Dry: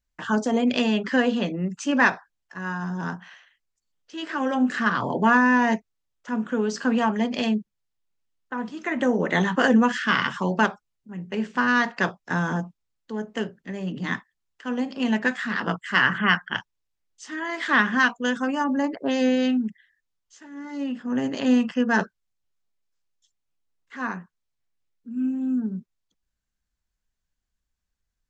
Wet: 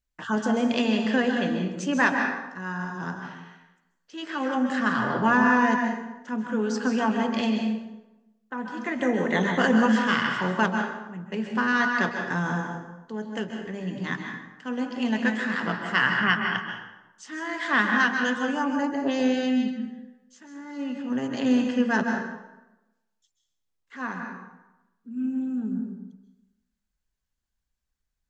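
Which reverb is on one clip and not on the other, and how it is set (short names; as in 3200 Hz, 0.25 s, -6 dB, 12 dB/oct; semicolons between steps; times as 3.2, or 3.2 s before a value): plate-style reverb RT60 0.97 s, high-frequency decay 0.7×, pre-delay 0.12 s, DRR 3 dB; gain -3 dB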